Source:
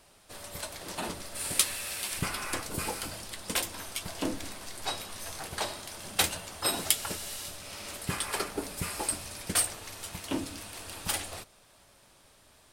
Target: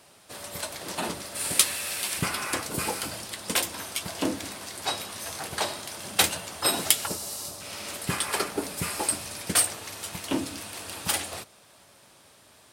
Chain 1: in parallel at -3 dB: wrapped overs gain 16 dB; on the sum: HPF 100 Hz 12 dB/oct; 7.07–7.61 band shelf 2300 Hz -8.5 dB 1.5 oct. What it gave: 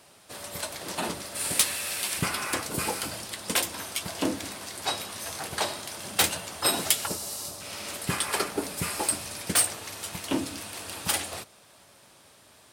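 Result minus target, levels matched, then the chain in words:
wrapped overs: distortion +16 dB
in parallel at -3 dB: wrapped overs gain 5 dB; on the sum: HPF 100 Hz 12 dB/oct; 7.07–7.61 band shelf 2300 Hz -8.5 dB 1.5 oct

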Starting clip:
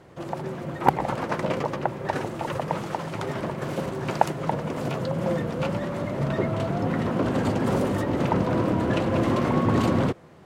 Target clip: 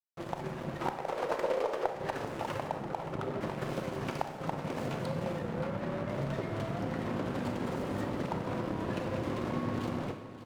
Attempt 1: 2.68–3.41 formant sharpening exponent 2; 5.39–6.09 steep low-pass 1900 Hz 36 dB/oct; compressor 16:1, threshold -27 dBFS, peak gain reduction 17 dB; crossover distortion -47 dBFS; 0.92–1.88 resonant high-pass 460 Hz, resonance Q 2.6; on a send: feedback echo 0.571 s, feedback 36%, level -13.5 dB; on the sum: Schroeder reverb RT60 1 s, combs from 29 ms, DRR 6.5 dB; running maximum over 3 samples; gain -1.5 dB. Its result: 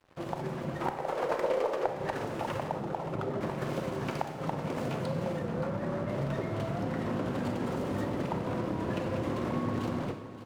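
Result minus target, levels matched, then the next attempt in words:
crossover distortion: distortion -9 dB
2.68–3.41 formant sharpening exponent 2; 5.39–6.09 steep low-pass 1900 Hz 36 dB/oct; compressor 16:1, threshold -27 dBFS, peak gain reduction 17 dB; crossover distortion -38.5 dBFS; 0.92–1.88 resonant high-pass 460 Hz, resonance Q 2.6; on a send: feedback echo 0.571 s, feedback 36%, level -13.5 dB; on the sum: Schroeder reverb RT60 1 s, combs from 29 ms, DRR 6.5 dB; running maximum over 3 samples; gain -1.5 dB

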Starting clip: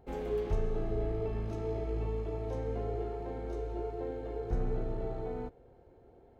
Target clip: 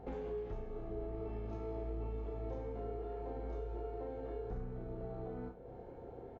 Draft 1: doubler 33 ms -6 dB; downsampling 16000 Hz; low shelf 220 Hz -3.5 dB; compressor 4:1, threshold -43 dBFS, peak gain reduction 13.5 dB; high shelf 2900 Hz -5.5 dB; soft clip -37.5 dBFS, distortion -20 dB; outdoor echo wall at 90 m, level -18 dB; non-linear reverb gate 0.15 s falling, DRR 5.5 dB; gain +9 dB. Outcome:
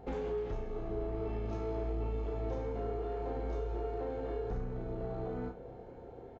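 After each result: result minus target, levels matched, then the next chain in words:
compressor: peak gain reduction -6 dB; 4000 Hz band +4.0 dB
doubler 33 ms -6 dB; downsampling 16000 Hz; low shelf 220 Hz -3.5 dB; compressor 4:1, threshold -51 dBFS, peak gain reduction 19.5 dB; high shelf 2900 Hz -5.5 dB; soft clip -37.5 dBFS, distortion -30 dB; outdoor echo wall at 90 m, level -18 dB; non-linear reverb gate 0.15 s falling, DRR 5.5 dB; gain +9 dB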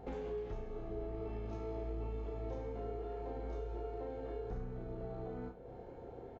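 4000 Hz band +4.0 dB
doubler 33 ms -6 dB; downsampling 16000 Hz; low shelf 220 Hz -3.5 dB; compressor 4:1, threshold -51 dBFS, peak gain reduction 19.5 dB; high shelf 2900 Hz -13 dB; soft clip -37.5 dBFS, distortion -30 dB; outdoor echo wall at 90 m, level -18 dB; non-linear reverb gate 0.15 s falling, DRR 5.5 dB; gain +9 dB

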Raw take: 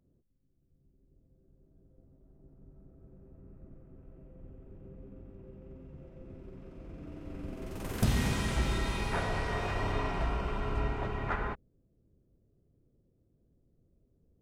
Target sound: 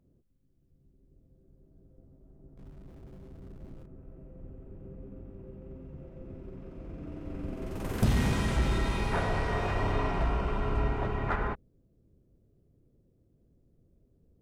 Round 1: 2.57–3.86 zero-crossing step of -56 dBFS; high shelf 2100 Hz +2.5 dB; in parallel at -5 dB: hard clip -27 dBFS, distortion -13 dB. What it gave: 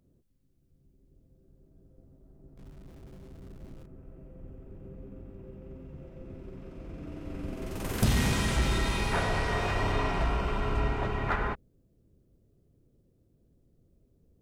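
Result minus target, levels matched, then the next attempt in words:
4000 Hz band +4.5 dB
2.57–3.86 zero-crossing step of -56 dBFS; high shelf 2100 Hz -5.5 dB; in parallel at -5 dB: hard clip -27 dBFS, distortion -13 dB

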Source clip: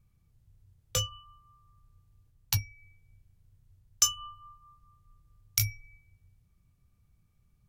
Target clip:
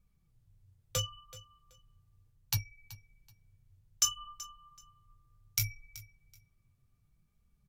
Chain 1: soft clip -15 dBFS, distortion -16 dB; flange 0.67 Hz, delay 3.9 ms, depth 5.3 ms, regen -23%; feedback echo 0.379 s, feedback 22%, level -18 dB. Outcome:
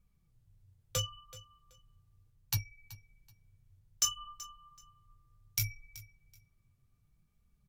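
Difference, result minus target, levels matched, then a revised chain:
soft clip: distortion +15 dB
soft clip -5 dBFS, distortion -31 dB; flange 0.67 Hz, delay 3.9 ms, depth 5.3 ms, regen -23%; feedback echo 0.379 s, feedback 22%, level -18 dB

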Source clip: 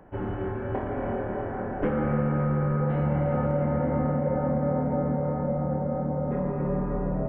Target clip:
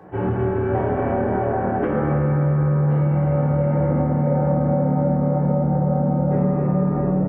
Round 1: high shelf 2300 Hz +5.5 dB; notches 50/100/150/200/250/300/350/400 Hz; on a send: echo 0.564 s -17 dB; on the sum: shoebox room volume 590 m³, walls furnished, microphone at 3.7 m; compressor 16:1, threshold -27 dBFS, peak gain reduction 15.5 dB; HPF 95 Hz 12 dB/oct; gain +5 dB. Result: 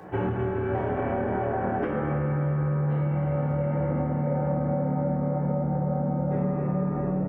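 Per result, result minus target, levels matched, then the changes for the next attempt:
compressor: peak gain reduction +7 dB; 4000 Hz band +6.5 dB
change: compressor 16:1, threshold -19.5 dBFS, peak gain reduction 8.5 dB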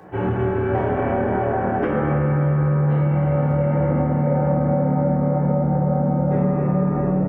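4000 Hz band +6.0 dB
change: high shelf 2300 Hz -4 dB

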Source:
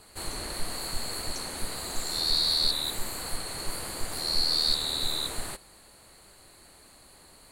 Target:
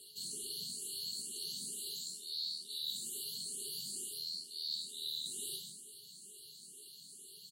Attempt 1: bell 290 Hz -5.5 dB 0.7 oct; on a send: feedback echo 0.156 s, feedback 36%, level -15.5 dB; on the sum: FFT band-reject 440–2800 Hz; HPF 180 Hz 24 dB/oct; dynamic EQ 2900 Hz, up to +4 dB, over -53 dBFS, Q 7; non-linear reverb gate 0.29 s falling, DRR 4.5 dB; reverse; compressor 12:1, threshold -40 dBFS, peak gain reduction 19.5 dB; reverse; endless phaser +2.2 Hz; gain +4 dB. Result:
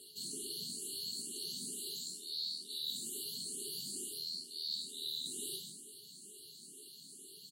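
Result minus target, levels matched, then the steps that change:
250 Hz band +6.5 dB
change: bell 290 Hz -17.5 dB 0.7 oct

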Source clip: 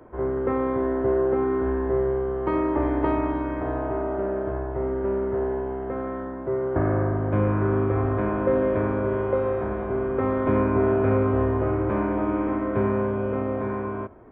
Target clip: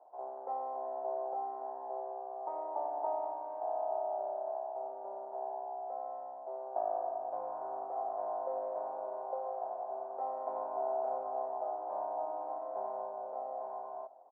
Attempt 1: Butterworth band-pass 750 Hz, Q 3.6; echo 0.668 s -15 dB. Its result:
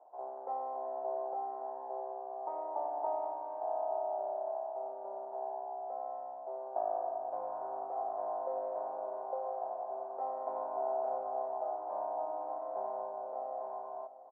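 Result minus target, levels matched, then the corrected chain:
echo-to-direct +9 dB
Butterworth band-pass 750 Hz, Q 3.6; echo 0.668 s -24 dB

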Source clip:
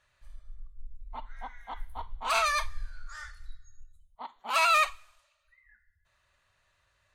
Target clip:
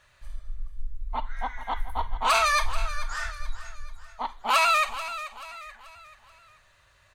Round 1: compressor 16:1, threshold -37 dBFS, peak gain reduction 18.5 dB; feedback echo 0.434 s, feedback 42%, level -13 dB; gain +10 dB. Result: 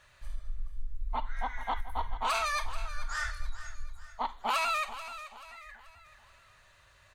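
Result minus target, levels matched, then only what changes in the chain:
compressor: peak gain reduction +9 dB
change: compressor 16:1, threshold -27.5 dBFS, peak gain reduction 10 dB

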